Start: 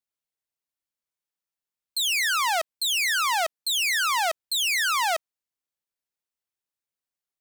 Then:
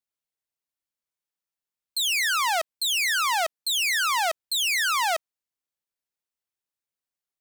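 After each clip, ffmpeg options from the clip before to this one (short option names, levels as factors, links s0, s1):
-af anull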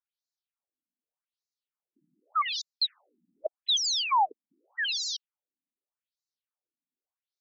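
-af "equalizer=f=250:t=o:w=1:g=4,equalizer=f=2000:t=o:w=1:g=-9,equalizer=f=8000:t=o:w=1:g=-4,acrusher=bits=7:mode=log:mix=0:aa=0.000001,afftfilt=real='re*between(b*sr/1024,220*pow(5400/220,0.5+0.5*sin(2*PI*0.84*pts/sr))/1.41,220*pow(5400/220,0.5+0.5*sin(2*PI*0.84*pts/sr))*1.41)':imag='im*between(b*sr/1024,220*pow(5400/220,0.5+0.5*sin(2*PI*0.84*pts/sr))/1.41,220*pow(5400/220,0.5+0.5*sin(2*PI*0.84*pts/sr))*1.41)':win_size=1024:overlap=0.75,volume=1.88"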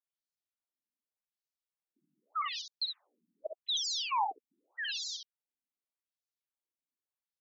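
-af "aecho=1:1:50|64:0.299|0.473,volume=0.398"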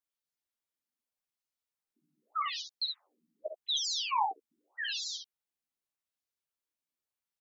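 -filter_complex "[0:a]asplit=2[s0][s1];[s1]adelay=13,volume=0.501[s2];[s0][s2]amix=inputs=2:normalize=0"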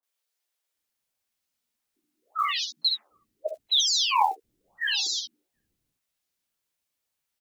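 -filter_complex "[0:a]asplit=2[s0][s1];[s1]acrusher=bits=5:mode=log:mix=0:aa=0.000001,volume=0.299[s2];[s0][s2]amix=inputs=2:normalize=0,acrossover=split=340|1100[s3][s4][s5];[s5]adelay=30[s6];[s3]adelay=750[s7];[s7][s4][s6]amix=inputs=3:normalize=0,volume=2.37"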